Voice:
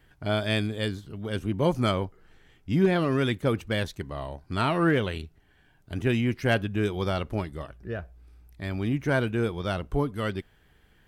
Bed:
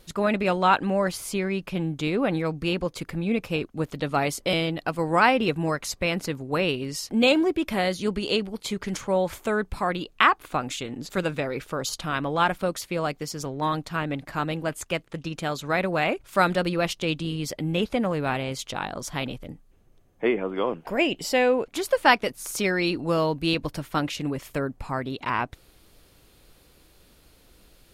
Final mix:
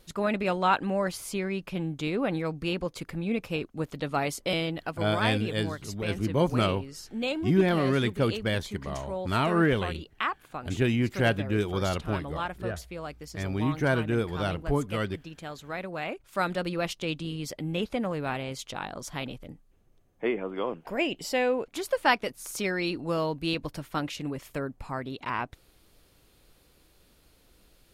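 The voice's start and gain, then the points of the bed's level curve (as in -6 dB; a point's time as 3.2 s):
4.75 s, -0.5 dB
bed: 4.78 s -4 dB
5.11 s -11 dB
15.86 s -11 dB
16.77 s -5 dB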